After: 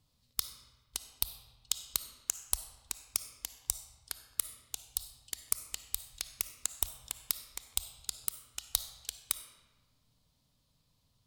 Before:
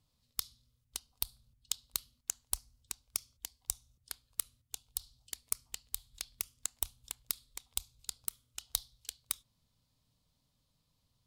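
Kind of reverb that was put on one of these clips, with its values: digital reverb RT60 1.3 s, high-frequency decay 0.75×, pre-delay 15 ms, DRR 10 dB; gain +3 dB

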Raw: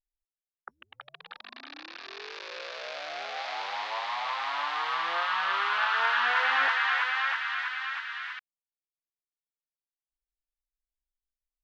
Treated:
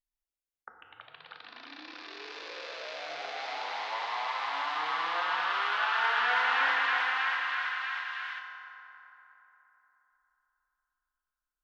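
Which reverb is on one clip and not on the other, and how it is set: FDN reverb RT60 3.7 s, high-frequency decay 0.45×, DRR 1.5 dB; gain -3.5 dB

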